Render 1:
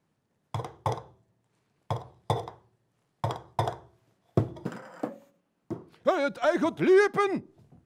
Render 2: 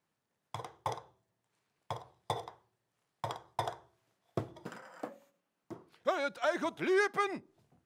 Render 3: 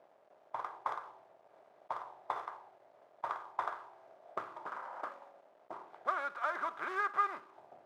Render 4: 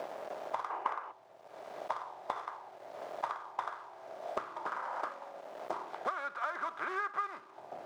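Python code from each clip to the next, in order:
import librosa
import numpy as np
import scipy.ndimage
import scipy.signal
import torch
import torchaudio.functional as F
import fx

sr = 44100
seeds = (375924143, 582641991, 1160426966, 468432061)

y1 = fx.low_shelf(x, sr, hz=470.0, db=-11.5)
y1 = y1 * 10.0 ** (-3.0 / 20.0)
y2 = fx.bin_compress(y1, sr, power=0.6)
y2 = fx.quant_companded(y2, sr, bits=4)
y2 = fx.auto_wah(y2, sr, base_hz=600.0, top_hz=1200.0, q=3.4, full_db=-31.0, direction='up')
y2 = y2 * 10.0 ** (1.5 / 20.0)
y3 = fx.spec_box(y2, sr, start_s=0.7, length_s=0.42, low_hz=220.0, high_hz=3100.0, gain_db=10)
y3 = fx.peak_eq(y3, sr, hz=5600.0, db=4.0, octaves=1.6)
y3 = fx.band_squash(y3, sr, depth_pct=100)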